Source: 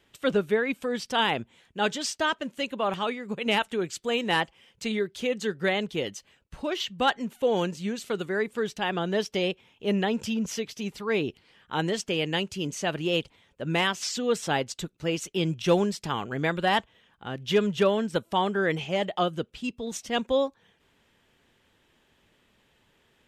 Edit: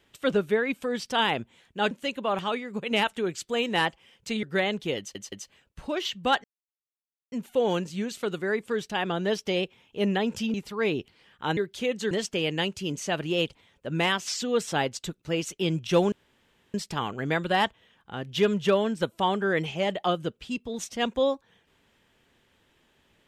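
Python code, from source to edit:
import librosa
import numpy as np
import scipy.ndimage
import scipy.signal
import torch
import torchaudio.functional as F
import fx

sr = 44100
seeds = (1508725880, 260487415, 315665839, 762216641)

y = fx.edit(x, sr, fx.cut(start_s=1.91, length_s=0.55),
    fx.move(start_s=4.98, length_s=0.54, to_s=11.86),
    fx.stutter(start_s=6.07, slice_s=0.17, count=3),
    fx.insert_silence(at_s=7.19, length_s=0.88),
    fx.cut(start_s=10.41, length_s=0.42),
    fx.insert_room_tone(at_s=15.87, length_s=0.62), tone=tone)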